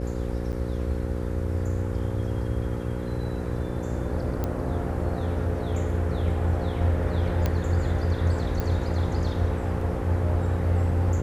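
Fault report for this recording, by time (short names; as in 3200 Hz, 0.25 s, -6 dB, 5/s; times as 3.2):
buzz 60 Hz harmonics 9 -31 dBFS
0.52–0.53 gap 8.9 ms
4.44 pop -15 dBFS
7.46 pop -12 dBFS
8.6 pop -15 dBFS
9.81 gap 3 ms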